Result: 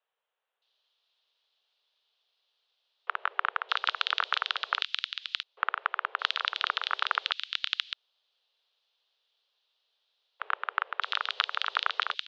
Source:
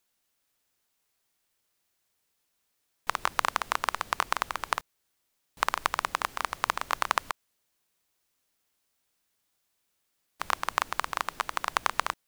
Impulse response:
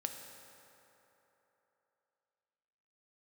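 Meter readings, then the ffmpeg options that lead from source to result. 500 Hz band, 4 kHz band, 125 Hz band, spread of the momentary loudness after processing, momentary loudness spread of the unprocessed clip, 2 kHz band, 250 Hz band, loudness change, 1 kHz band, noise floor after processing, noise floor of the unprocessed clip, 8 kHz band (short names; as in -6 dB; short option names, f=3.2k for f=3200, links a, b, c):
-6.0 dB, +8.0 dB, under -40 dB, 6 LU, 5 LU, +1.5 dB, under -20 dB, 0.0 dB, -3.0 dB, -82 dBFS, -77 dBFS, under -15 dB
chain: -filter_complex "[0:a]aexciter=amount=4.2:drive=8:freq=2.7k,highpass=f=160:t=q:w=0.5412,highpass=f=160:t=q:w=1.307,lowpass=f=3.5k:t=q:w=0.5176,lowpass=f=3.5k:t=q:w=0.7071,lowpass=f=3.5k:t=q:w=1.932,afreqshift=250,acrossover=split=2100[a][b];[b]adelay=620[c];[a][c]amix=inputs=2:normalize=0"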